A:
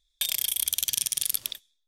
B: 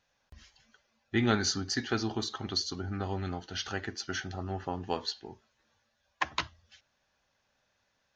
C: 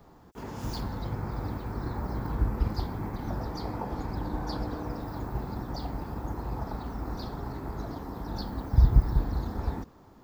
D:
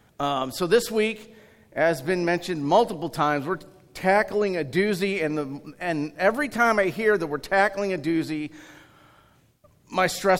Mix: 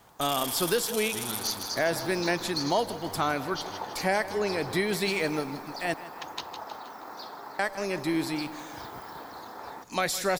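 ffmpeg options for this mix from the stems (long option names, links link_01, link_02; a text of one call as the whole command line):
ffmpeg -i stem1.wav -i stem2.wav -i stem3.wav -i stem4.wav -filter_complex "[0:a]asplit=2[link_01][link_02];[link_02]adelay=9.8,afreqshift=-1.6[link_03];[link_01][link_03]amix=inputs=2:normalize=1,volume=-6dB,asplit=2[link_04][link_05];[link_05]volume=-3.5dB[link_06];[1:a]highshelf=frequency=2700:width_type=q:width=1.5:gain=9.5,aeval=exprs='clip(val(0),-1,0.188)':channel_layout=same,volume=-12dB,asplit=2[link_07][link_08];[link_08]volume=-8dB[link_09];[2:a]highpass=680,volume=2.5dB,asplit=2[link_10][link_11];[link_11]volume=-18.5dB[link_12];[3:a]highshelf=frequency=3400:gain=10.5,volume=-4dB,asplit=3[link_13][link_14][link_15];[link_13]atrim=end=5.94,asetpts=PTS-STARTPTS,afade=type=out:start_time=5.936:duration=0.004:curve=hsin[link_16];[link_14]atrim=start=5.94:end=7.59,asetpts=PTS-STARTPTS,volume=0[link_17];[link_15]atrim=start=7.59,asetpts=PTS-STARTPTS,afade=type=in:duration=0.004:curve=hsin[link_18];[link_16][link_17][link_18]concat=n=3:v=0:a=1,asplit=2[link_19][link_20];[link_20]volume=-16.5dB[link_21];[link_06][link_09][link_12][link_21]amix=inputs=4:normalize=0,aecho=0:1:158|316|474|632|790|948|1106:1|0.51|0.26|0.133|0.0677|0.0345|0.0176[link_22];[link_04][link_07][link_10][link_19][link_22]amix=inputs=5:normalize=0,alimiter=limit=-14.5dB:level=0:latency=1:release=439" out.wav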